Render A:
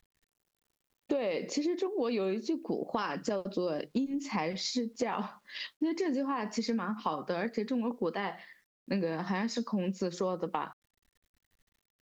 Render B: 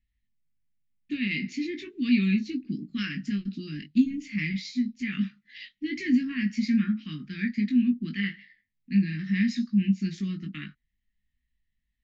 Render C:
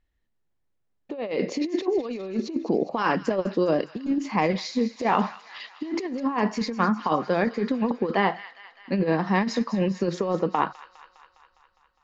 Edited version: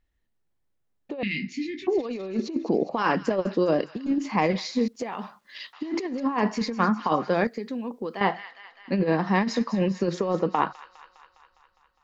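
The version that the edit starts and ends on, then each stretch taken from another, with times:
C
1.23–1.87 s: from B
4.88–5.73 s: from A
7.47–8.21 s: from A

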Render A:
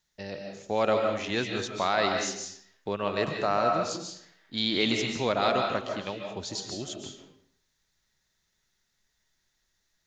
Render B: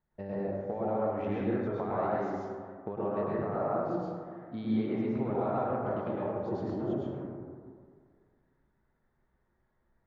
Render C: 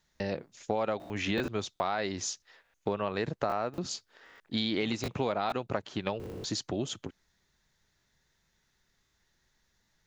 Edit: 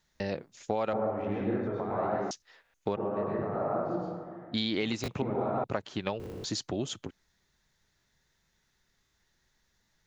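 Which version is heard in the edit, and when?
C
0.93–2.31 s: from B
2.96–4.54 s: from B
5.22–5.64 s: from B
not used: A

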